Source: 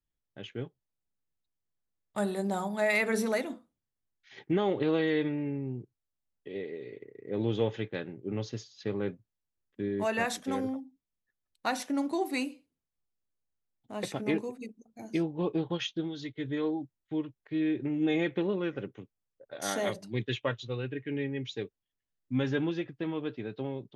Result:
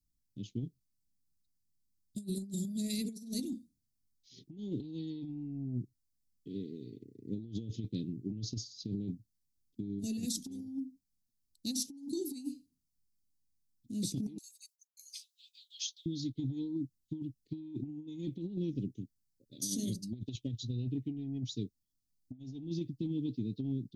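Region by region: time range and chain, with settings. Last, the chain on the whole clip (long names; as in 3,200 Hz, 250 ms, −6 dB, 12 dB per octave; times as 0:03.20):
0:14.38–0:16.06: downward expander −55 dBFS + linear-phase brick-wall high-pass 1,200 Hz + high-shelf EQ 4,400 Hz +5 dB
whole clip: elliptic band-stop filter 270–4,600 Hz, stop band 80 dB; compressor whose output falls as the input rises −39 dBFS, ratio −0.5; level +2.5 dB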